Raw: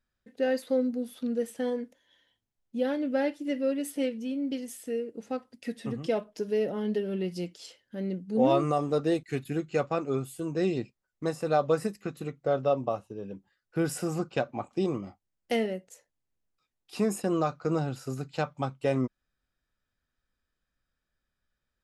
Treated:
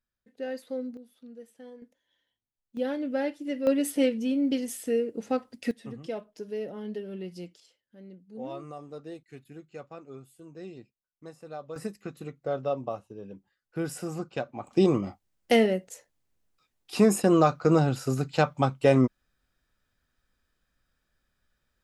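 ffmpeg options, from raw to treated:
ffmpeg -i in.wav -af "asetnsamples=nb_out_samples=441:pad=0,asendcmd='0.97 volume volume -16.5dB;1.82 volume volume -9.5dB;2.77 volume volume -1.5dB;3.67 volume volume 5.5dB;5.71 volume volume -6.5dB;7.6 volume volume -15dB;11.76 volume volume -3.5dB;14.67 volume volume 7dB',volume=-7.5dB" out.wav

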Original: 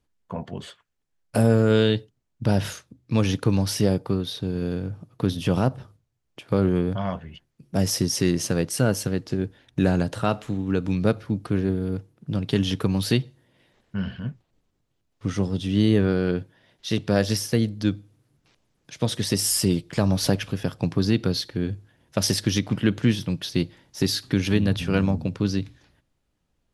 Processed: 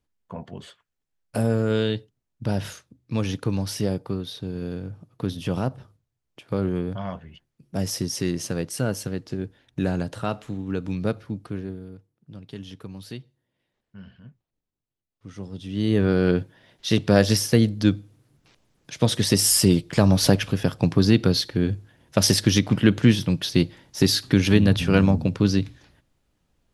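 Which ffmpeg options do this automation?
ffmpeg -i in.wav -af "volume=15.5dB,afade=type=out:start_time=11.17:duration=0.79:silence=0.266073,afade=type=in:start_time=15.26:duration=0.5:silence=0.375837,afade=type=in:start_time=15.76:duration=0.52:silence=0.281838" out.wav

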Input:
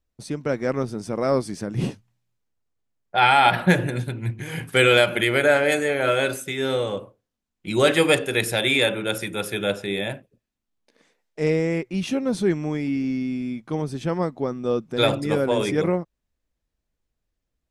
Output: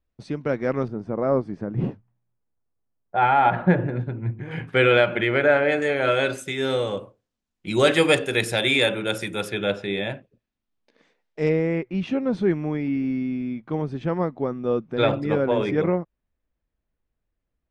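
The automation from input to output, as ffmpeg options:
ffmpeg -i in.wav -af "asetnsamples=nb_out_samples=441:pad=0,asendcmd='0.88 lowpass f 1300;4.51 lowpass f 2400;5.82 lowpass f 5100;6.38 lowpass f 8500;9.49 lowpass f 4300;11.49 lowpass f 2500',lowpass=3400" out.wav

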